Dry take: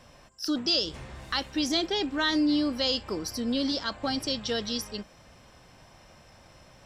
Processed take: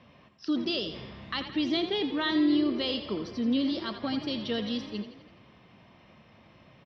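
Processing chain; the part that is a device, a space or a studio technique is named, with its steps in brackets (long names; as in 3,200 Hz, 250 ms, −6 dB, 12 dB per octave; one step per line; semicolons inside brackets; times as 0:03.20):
frequency-shifting delay pedal into a guitar cabinet (echo with shifted repeats 84 ms, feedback 55%, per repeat +33 Hz, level −10.5 dB; loudspeaker in its box 100–3,500 Hz, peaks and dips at 210 Hz +5 dB, 540 Hz −4 dB, 800 Hz −6 dB, 1,500 Hz −8 dB)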